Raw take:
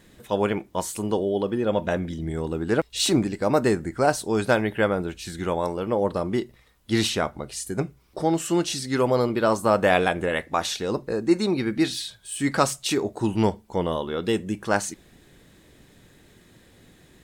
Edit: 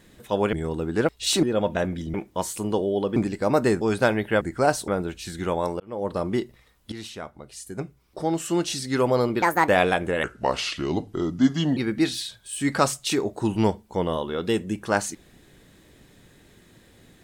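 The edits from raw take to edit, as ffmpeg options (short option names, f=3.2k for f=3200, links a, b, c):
-filter_complex "[0:a]asplit=14[a][b][c][d][e][f][g][h][i][j][k][l][m][n];[a]atrim=end=0.532[o];[b]atrim=start=2.258:end=3.162[p];[c]atrim=start=1.548:end=2.262[q];[d]atrim=start=0.528:end=1.552[r];[e]atrim=start=3.158:end=3.812[s];[f]atrim=start=4.278:end=4.882[t];[g]atrim=start=3.808:end=4.282[u];[h]atrim=start=4.878:end=5.8,asetpts=PTS-STARTPTS,afade=t=out:st=0.918:d=0.004:c=hsin[v];[i]atrim=start=5.8:end=6.92,asetpts=PTS-STARTPTS,afade=t=in:d=0.41,afade=t=out:st=1.116:d=0.004:c=hsin:silence=0.133352[w];[j]atrim=start=6.92:end=9.424,asetpts=PTS-STARTPTS,afade=t=in:d=1.94:silence=0.133352[x];[k]atrim=start=9.42:end=9.83,asetpts=PTS-STARTPTS,asetrate=68355,aresample=44100,atrim=end_sample=11665,asetpts=PTS-STARTPTS[y];[l]atrim=start=9.826:end=10.384[z];[m]atrim=start=10.38:end=11.56,asetpts=PTS-STARTPTS,asetrate=33957,aresample=44100[aa];[n]atrim=start=11.556[ab];[o][p]acrossfade=d=0.004:c1=hsin:c2=hsin[ac];[ac][q]acrossfade=d=0.004:c1=hsin:c2=hsin[ad];[ad][r]acrossfade=d=0.004:c1=hsin:c2=hsin[ae];[ae][s]acrossfade=d=0.004:c1=hsin:c2=hsin[af];[af][t]acrossfade=d=0.004:c1=hsin:c2=hsin[ag];[ag][u]acrossfade=d=0.004:c1=hsin:c2=hsin[ah];[v][w][x]concat=n=3:v=0:a=1[ai];[ah][ai]acrossfade=d=0.004:c1=hsin:c2=hsin[aj];[aj][y]acrossfade=d=0.004:c1=hsin:c2=hsin[ak];[ak][z]acrossfade=d=0.004:c1=hsin:c2=hsin[al];[al][aa]acrossfade=d=0.004:c1=hsin:c2=hsin[am];[am][ab]acrossfade=d=0.004:c1=hsin:c2=hsin"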